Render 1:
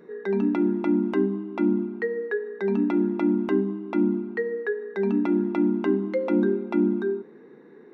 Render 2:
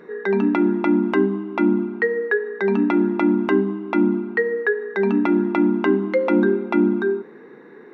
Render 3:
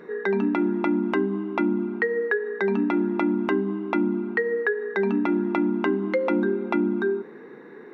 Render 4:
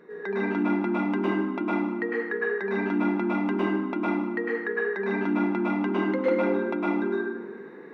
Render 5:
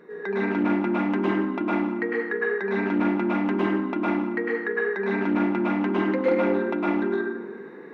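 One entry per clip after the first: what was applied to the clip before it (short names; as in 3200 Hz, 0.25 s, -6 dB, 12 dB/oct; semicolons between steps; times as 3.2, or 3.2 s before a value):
bell 1600 Hz +8 dB 2.8 oct; gain +3 dB
compressor 3:1, threshold -21 dBFS, peak gain reduction 7 dB
plate-style reverb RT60 1.1 s, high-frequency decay 0.65×, pre-delay 95 ms, DRR -7.5 dB; gain -8.5 dB
Doppler distortion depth 0.15 ms; gain +2 dB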